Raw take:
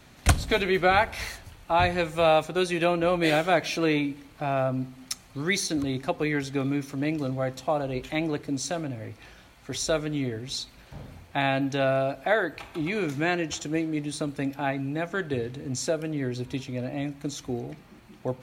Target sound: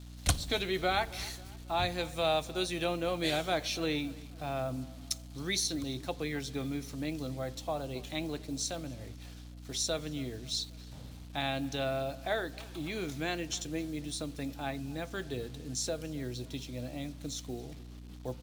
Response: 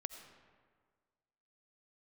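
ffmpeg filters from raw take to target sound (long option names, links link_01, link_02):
-filter_complex "[0:a]acrusher=bits=7:mix=0:aa=0.5,aeval=exprs='val(0)+0.0141*(sin(2*PI*60*n/s)+sin(2*PI*2*60*n/s)/2+sin(2*PI*3*60*n/s)/3+sin(2*PI*4*60*n/s)/4+sin(2*PI*5*60*n/s)/5)':channel_layout=same,highshelf=frequency=2800:width_type=q:width=1.5:gain=6,asplit=2[link_01][link_02];[link_02]adelay=270,lowpass=frequency=3500:poles=1,volume=-21dB,asplit=2[link_03][link_04];[link_04]adelay=270,lowpass=frequency=3500:poles=1,volume=0.51,asplit=2[link_05][link_06];[link_06]adelay=270,lowpass=frequency=3500:poles=1,volume=0.51,asplit=2[link_07][link_08];[link_08]adelay=270,lowpass=frequency=3500:poles=1,volume=0.51[link_09];[link_01][link_03][link_05][link_07][link_09]amix=inputs=5:normalize=0,volume=-9dB"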